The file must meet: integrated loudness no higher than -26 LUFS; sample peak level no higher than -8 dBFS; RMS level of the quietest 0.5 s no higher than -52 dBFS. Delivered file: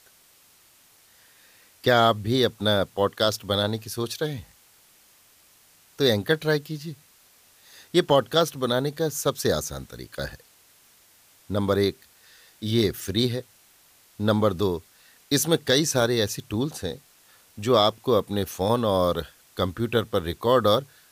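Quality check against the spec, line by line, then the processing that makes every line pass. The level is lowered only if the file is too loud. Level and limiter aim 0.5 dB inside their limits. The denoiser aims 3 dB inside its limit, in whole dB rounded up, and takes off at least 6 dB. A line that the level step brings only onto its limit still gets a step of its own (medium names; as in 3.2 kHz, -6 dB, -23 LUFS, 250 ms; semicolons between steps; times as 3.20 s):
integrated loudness -24.5 LUFS: fail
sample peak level -7.0 dBFS: fail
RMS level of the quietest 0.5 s -57 dBFS: pass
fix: trim -2 dB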